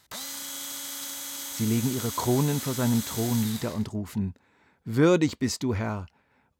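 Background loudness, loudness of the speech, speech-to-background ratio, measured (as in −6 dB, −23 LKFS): −33.5 LKFS, −27.0 LKFS, 6.5 dB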